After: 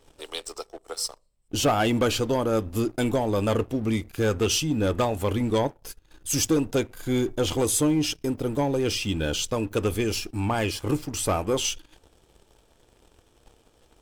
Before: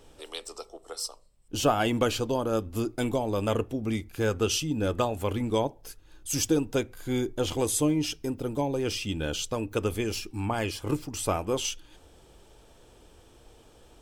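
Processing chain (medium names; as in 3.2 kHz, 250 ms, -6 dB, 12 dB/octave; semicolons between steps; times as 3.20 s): waveshaping leveller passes 2; trim -3 dB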